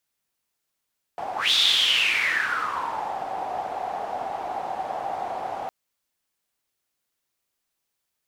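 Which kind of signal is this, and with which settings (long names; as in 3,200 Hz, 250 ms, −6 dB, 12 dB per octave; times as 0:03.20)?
pass-by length 4.51 s, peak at 0:00.34, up 0.18 s, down 1.80 s, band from 760 Hz, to 3,600 Hz, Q 8.2, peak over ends 11 dB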